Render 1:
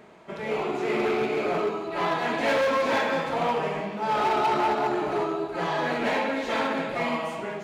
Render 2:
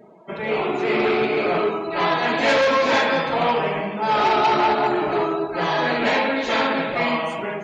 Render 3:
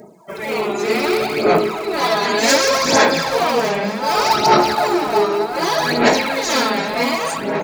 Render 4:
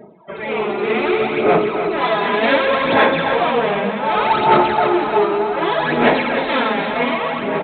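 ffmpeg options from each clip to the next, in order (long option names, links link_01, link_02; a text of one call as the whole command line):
ffmpeg -i in.wav -af "afftdn=noise_reduction=24:noise_floor=-48,highshelf=frequency=3300:gain=8,volume=5dB" out.wav
ffmpeg -i in.wav -filter_complex "[0:a]asplit=2[link_01][link_02];[link_02]adelay=706,lowpass=frequency=4200:poles=1,volume=-9.5dB,asplit=2[link_03][link_04];[link_04]adelay=706,lowpass=frequency=4200:poles=1,volume=0.49,asplit=2[link_05][link_06];[link_06]adelay=706,lowpass=frequency=4200:poles=1,volume=0.49,asplit=2[link_07][link_08];[link_08]adelay=706,lowpass=frequency=4200:poles=1,volume=0.49,asplit=2[link_09][link_10];[link_10]adelay=706,lowpass=frequency=4200:poles=1,volume=0.49[link_11];[link_01][link_03][link_05][link_07][link_09][link_11]amix=inputs=6:normalize=0,aphaser=in_gain=1:out_gain=1:delay=5:decay=0.6:speed=0.66:type=sinusoidal,aexciter=amount=9:drive=3.1:freq=4600" out.wav
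ffmpeg -i in.wav -filter_complex "[0:a]asplit=2[link_01][link_02];[link_02]aecho=0:1:298:0.355[link_03];[link_01][link_03]amix=inputs=2:normalize=0,aresample=8000,aresample=44100" out.wav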